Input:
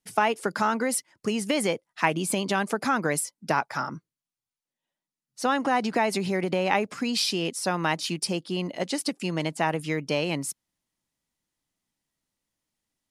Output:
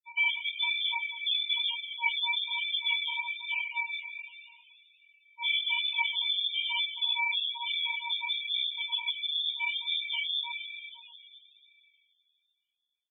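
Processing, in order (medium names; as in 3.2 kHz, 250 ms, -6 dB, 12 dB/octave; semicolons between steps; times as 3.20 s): sorted samples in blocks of 32 samples; delay 189 ms -23.5 dB; crossover distortion -48 dBFS; on a send at -7 dB: reverberation RT60 2.9 s, pre-delay 9 ms; on the sum: frequency inversion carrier 3.7 kHz; in parallel at +1.5 dB: compression, threshold -33 dBFS, peak gain reduction 14.5 dB; on the sum: loudest bins only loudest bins 4; chorus voices 2, 1.1 Hz, delay 19 ms, depth 3 ms; 7.31–9.15 s: three bands compressed up and down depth 40%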